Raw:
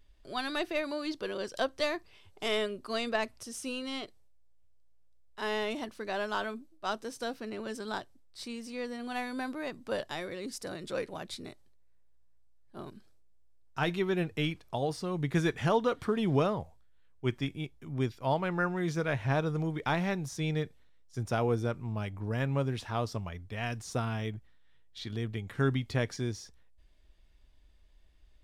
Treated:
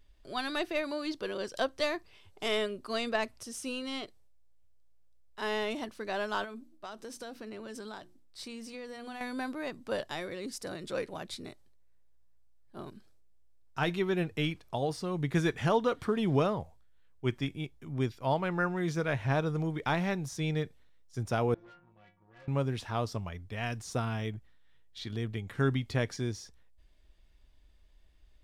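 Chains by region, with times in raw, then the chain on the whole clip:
6.44–9.21 s: hum notches 60/120/180/240/300/360 Hz + compression 10:1, threshold -38 dBFS
21.54–22.48 s: low-pass 3.3 kHz 24 dB/octave + inharmonic resonator 170 Hz, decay 0.47 s, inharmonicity 0.008 + valve stage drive 51 dB, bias 0.5
whole clip: none

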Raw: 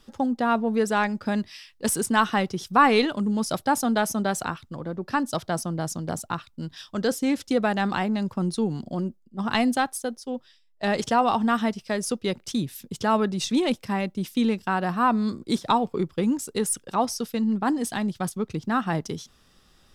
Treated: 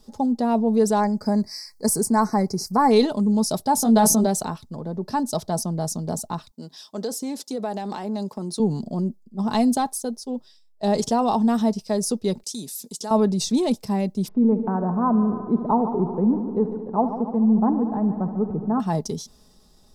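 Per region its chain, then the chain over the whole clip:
1.00–2.91 s: elliptic band-stop 2.2–4.4 kHz + tape noise reduction on one side only encoder only
3.76–4.27 s: doubling 18 ms -5 dB + decay stretcher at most 24 dB/s
6.51–8.60 s: high-pass 290 Hz + compression 3:1, threshold -27 dBFS
12.43–13.11 s: high-pass 230 Hz + peaking EQ 8.2 kHz +15 dB 2.2 oct + compression 2:1, threshold -38 dBFS
14.28–18.80 s: low-pass 1.3 kHz 24 dB/octave + upward compressor, threshold -42 dBFS + multi-head delay 73 ms, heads first and second, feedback 70%, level -16 dB
whole clip: high-order bell 2 kHz -12.5 dB; comb 4.7 ms, depth 42%; transient shaper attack -1 dB, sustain +3 dB; trim +2 dB

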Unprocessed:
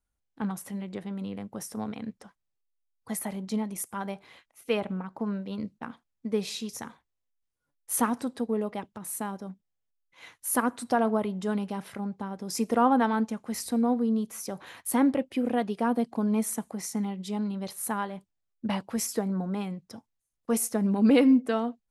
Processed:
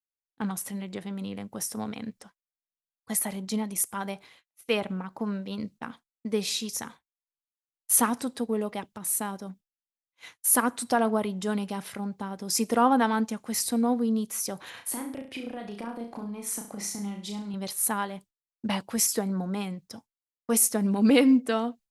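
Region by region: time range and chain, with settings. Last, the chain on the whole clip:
14.70–17.54 s: treble shelf 6.4 kHz -10 dB + compression 12:1, threshold -34 dBFS + flutter echo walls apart 5.9 m, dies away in 0.41 s
whole clip: expander -45 dBFS; treble shelf 2.4 kHz +8.5 dB

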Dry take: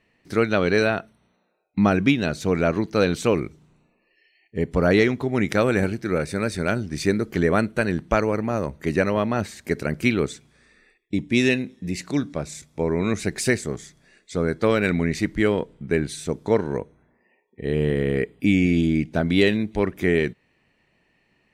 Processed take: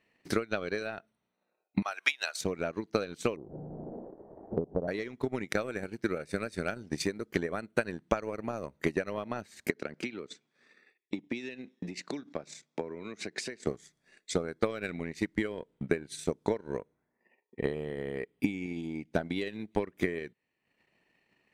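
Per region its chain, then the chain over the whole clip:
1.82–2.41 s: high-pass 770 Hz 24 dB/octave + treble shelf 4.4 kHz +8 dB + upward compressor, threshold -26 dBFS
3.36–4.88 s: one-bit delta coder 16 kbps, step -26 dBFS + steep low-pass 730 Hz
9.70–13.67 s: three-band isolator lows -21 dB, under 160 Hz, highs -19 dB, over 6.9 kHz + compression, threshold -31 dBFS
whole clip: compression 6:1, threshold -26 dBFS; bass shelf 120 Hz -12 dB; transient shaper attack +11 dB, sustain -10 dB; trim -6 dB

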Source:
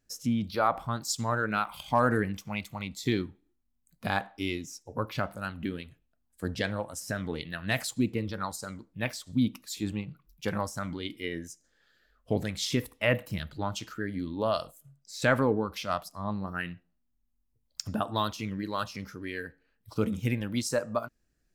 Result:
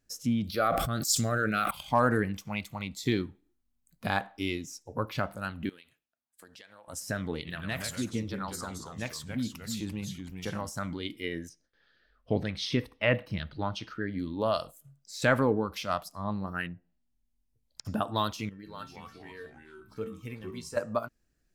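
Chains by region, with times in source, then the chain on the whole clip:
0.45–1.71 s: Butterworth band-stop 940 Hz, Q 2.1 + treble shelf 7.9 kHz +9.5 dB + decay stretcher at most 29 dB/s
5.69–6.88 s: high-pass 1.4 kHz 6 dB/octave + compression 10:1, threshold -48 dBFS + tape noise reduction on one side only decoder only
7.39–10.69 s: compression 2:1, threshold -33 dBFS + ever faster or slower copies 80 ms, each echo -2 st, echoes 2, each echo -6 dB
11.49–14.18 s: Savitzky-Golay filter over 15 samples + gate with hold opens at -60 dBFS, closes at -64 dBFS
16.66–17.85 s: low-pass that closes with the level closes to 1.1 kHz, closed at -40 dBFS + peaking EQ 1.2 kHz -7.5 dB 0.39 oct
18.49–20.77 s: feedback comb 450 Hz, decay 0.19 s, mix 80% + ever faster or slower copies 174 ms, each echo -3 st, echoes 3, each echo -6 dB
whole clip: none

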